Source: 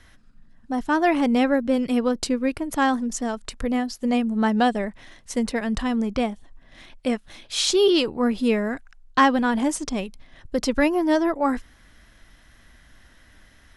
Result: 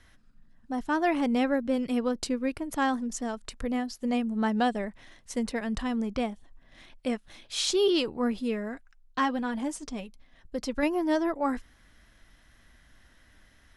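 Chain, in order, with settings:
0:08.39–0:10.83: flanger 1.7 Hz, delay 3.4 ms, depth 1.2 ms, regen −52%
level −6 dB

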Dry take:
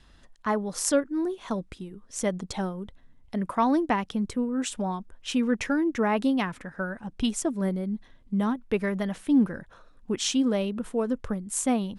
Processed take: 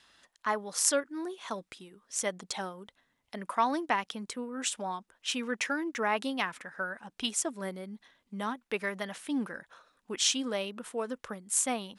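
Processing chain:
high-pass filter 1,200 Hz 6 dB per octave
level +2 dB

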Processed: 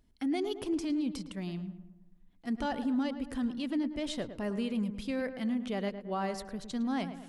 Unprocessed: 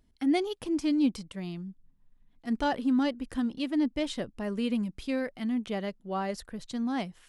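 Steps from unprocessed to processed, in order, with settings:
brickwall limiter −24.5 dBFS, peak gain reduction 8.5 dB
on a send: feedback echo with a low-pass in the loop 109 ms, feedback 52%, low-pass 1,900 Hz, level −10 dB
on the sum: level −1 dB

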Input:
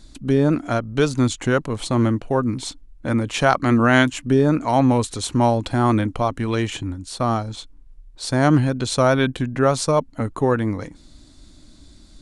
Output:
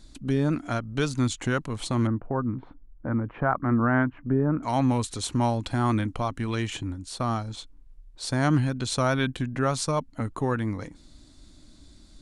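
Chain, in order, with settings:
0:02.07–0:04.63: low-pass filter 1,500 Hz 24 dB per octave
dynamic equaliser 500 Hz, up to −6 dB, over −30 dBFS, Q 0.97
level −4.5 dB

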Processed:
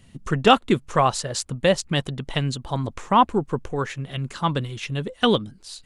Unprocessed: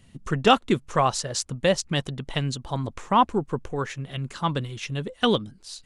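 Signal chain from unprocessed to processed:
dynamic equaliser 5,800 Hz, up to −5 dB, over −48 dBFS, Q 2.7
level +2.5 dB

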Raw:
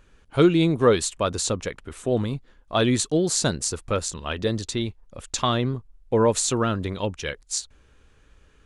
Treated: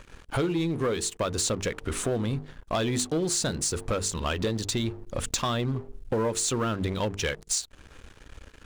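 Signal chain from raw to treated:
mains-hum notches 50/100/150/200/250/300/350/400/450 Hz
downward compressor 6 to 1, threshold −35 dBFS, peak gain reduction 20.5 dB
leveller curve on the samples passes 3

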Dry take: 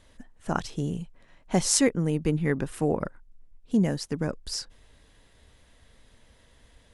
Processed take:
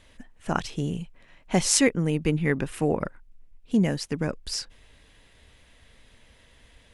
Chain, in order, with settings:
parametric band 2,500 Hz +6.5 dB 0.9 octaves
level +1 dB

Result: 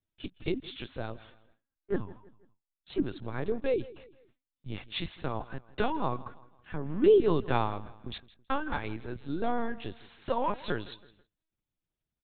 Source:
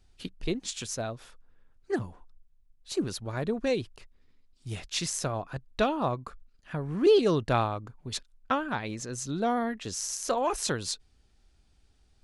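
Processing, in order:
notch comb filter 640 Hz
linear-prediction vocoder at 8 kHz pitch kept
on a send: repeating echo 163 ms, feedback 41%, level −19.5 dB
on the sum: noise gate with hold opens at −51 dBFS

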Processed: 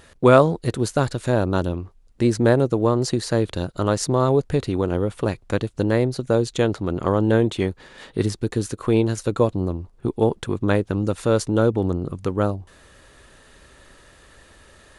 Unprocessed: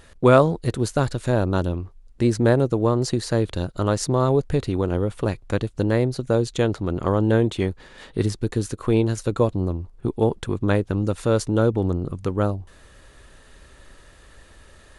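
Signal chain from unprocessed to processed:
low-shelf EQ 62 Hz −9.5 dB
level +1.5 dB

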